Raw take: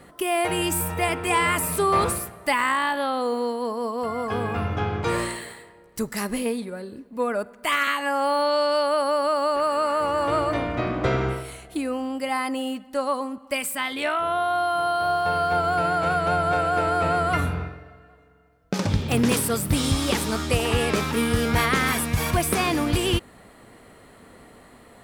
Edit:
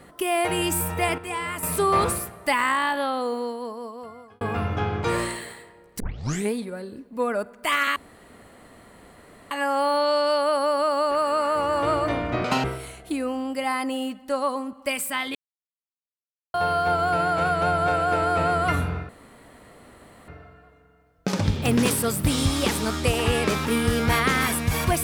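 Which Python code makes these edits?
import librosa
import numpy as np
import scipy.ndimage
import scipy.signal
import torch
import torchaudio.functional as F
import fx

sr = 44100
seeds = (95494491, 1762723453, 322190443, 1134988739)

y = fx.edit(x, sr, fx.clip_gain(start_s=1.18, length_s=0.45, db=-8.5),
    fx.fade_out_span(start_s=2.99, length_s=1.42),
    fx.tape_start(start_s=6.0, length_s=0.52),
    fx.insert_room_tone(at_s=7.96, length_s=1.55),
    fx.speed_span(start_s=10.89, length_s=0.4, speed=2.0),
    fx.silence(start_s=14.0, length_s=1.19),
    fx.insert_room_tone(at_s=17.74, length_s=1.19), tone=tone)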